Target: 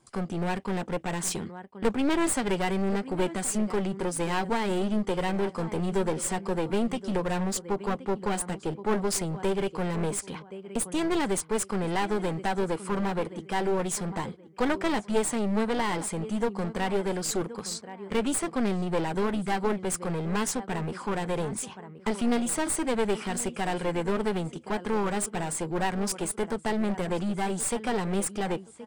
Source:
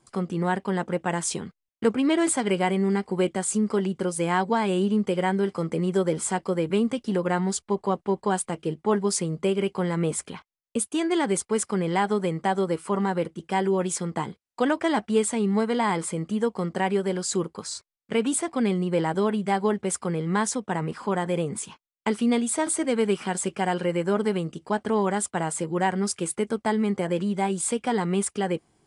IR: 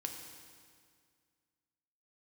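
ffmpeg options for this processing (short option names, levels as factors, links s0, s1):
-filter_complex "[0:a]asplit=2[s0][s1];[s1]adelay=1074,lowpass=f=2600:p=1,volume=0.141,asplit=2[s2][s3];[s3]adelay=1074,lowpass=f=2600:p=1,volume=0.3,asplit=2[s4][s5];[s5]adelay=1074,lowpass=f=2600:p=1,volume=0.3[s6];[s0][s2][s4][s6]amix=inputs=4:normalize=0,aeval=exprs='clip(val(0),-1,0.0316)':c=same"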